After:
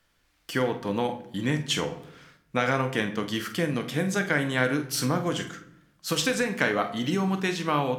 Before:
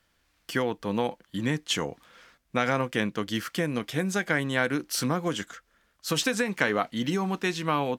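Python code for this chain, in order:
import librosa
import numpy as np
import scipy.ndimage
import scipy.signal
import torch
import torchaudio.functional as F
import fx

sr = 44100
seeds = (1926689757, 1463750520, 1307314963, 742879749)

y = fx.doubler(x, sr, ms=47.0, db=-11.5)
y = fx.room_shoebox(y, sr, seeds[0], volume_m3=140.0, walls='mixed', distance_m=0.37)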